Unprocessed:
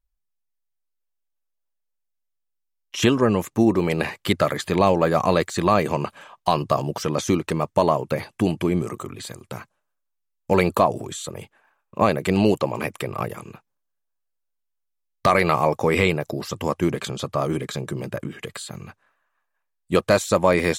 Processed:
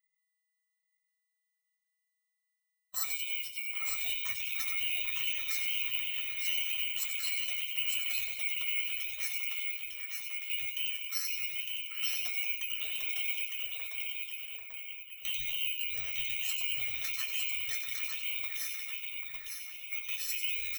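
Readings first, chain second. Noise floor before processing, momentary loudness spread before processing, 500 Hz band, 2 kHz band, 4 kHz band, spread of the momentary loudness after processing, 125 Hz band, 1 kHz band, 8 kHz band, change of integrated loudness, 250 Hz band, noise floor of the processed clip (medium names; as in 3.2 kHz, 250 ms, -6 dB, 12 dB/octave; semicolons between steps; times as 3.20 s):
-77 dBFS, 15 LU, under -40 dB, -6.0 dB, -1.0 dB, 7 LU, under -35 dB, -32.5 dB, -4.5 dB, -10.0 dB, under -40 dB, -83 dBFS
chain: split-band scrambler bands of 2 kHz; compression, threshold -21 dBFS, peak gain reduction 9 dB; comb 1.7 ms, depth 100%; two-band feedback delay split 2.9 kHz, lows 790 ms, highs 92 ms, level -6 dB; peak limiter -15.5 dBFS, peak gain reduction 9.5 dB; rippled EQ curve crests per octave 2, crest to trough 10 dB; delay 906 ms -3.5 dB; careless resampling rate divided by 2×, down none, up zero stuff; amplifier tone stack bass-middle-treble 10-0-10; feedback comb 120 Hz, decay 0.15 s, harmonics all, mix 90%; trim -3 dB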